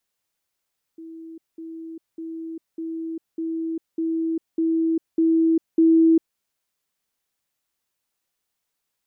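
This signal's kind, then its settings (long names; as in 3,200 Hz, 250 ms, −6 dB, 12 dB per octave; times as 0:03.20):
level staircase 326 Hz −36 dBFS, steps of 3 dB, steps 9, 0.40 s 0.20 s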